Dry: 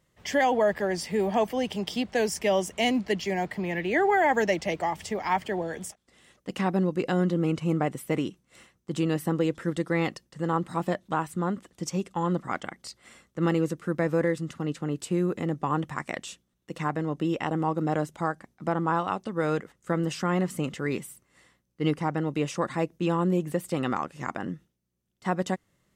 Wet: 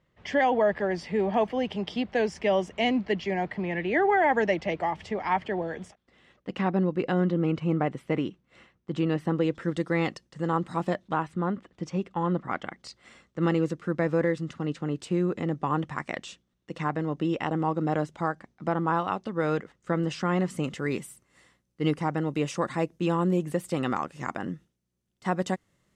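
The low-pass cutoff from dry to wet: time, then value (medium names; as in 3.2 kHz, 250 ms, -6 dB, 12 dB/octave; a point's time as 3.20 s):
9.19 s 3.3 kHz
9.84 s 7 kHz
10.89 s 7 kHz
11.35 s 3.1 kHz
12.46 s 3.1 kHz
12.86 s 5.6 kHz
20.21 s 5.6 kHz
20.88 s 11 kHz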